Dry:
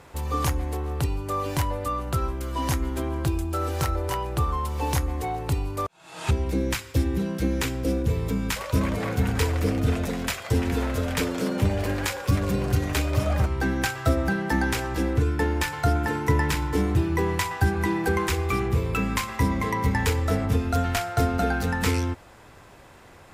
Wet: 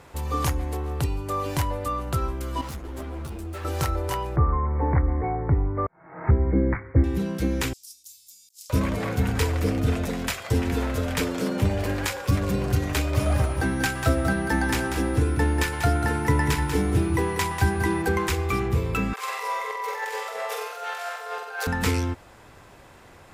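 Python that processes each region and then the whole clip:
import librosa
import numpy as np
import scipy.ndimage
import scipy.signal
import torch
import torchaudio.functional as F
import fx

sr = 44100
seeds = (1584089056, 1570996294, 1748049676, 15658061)

y = fx.chain(x, sr, fx.overload_stage(gain_db=29.5),
    fx.ensemble(), at=(2.61, 3.65))
y = fx.chain(y, sr, fx.cheby1_lowpass(hz=2200.0, order=8),
    fx.low_shelf(hz=480.0, db=5.5), at=(4.36, 7.04))
y = fx.chain(y, sr, fx.cheby2_highpass(hz=1600.0, order=4, stop_db=60),
    fx.over_compress(threshold_db=-46.0, ratio=-0.5), at=(7.73, 8.7))
y = fx.dmg_tone(y, sr, hz=9700.0, level_db=-44.0, at=(13.16, 18.01), fade=0.02)
y = fx.echo_single(y, sr, ms=191, db=-7.5, at=(13.16, 18.01), fade=0.02)
y = fx.chain(y, sr, fx.steep_highpass(hz=420.0, slope=96),
    fx.over_compress(threshold_db=-32.0, ratio=-0.5),
    fx.room_flutter(wall_m=8.0, rt60_s=0.77), at=(19.13, 21.67))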